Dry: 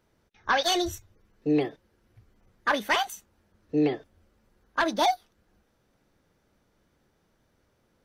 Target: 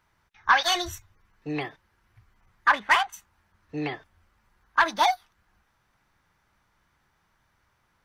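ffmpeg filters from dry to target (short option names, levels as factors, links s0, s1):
-filter_complex "[0:a]asplit=3[s0][s1][s2];[s0]afade=t=out:st=2.71:d=0.02[s3];[s1]adynamicsmooth=sensitivity=3:basefreq=1900,afade=t=in:st=2.71:d=0.02,afade=t=out:st=3.12:d=0.02[s4];[s2]afade=t=in:st=3.12:d=0.02[s5];[s3][s4][s5]amix=inputs=3:normalize=0,equalizer=f=250:t=o:w=1:g=-7,equalizer=f=500:t=o:w=1:g=-10,equalizer=f=1000:t=o:w=1:g=8,equalizer=f=2000:t=o:w=1:g=5"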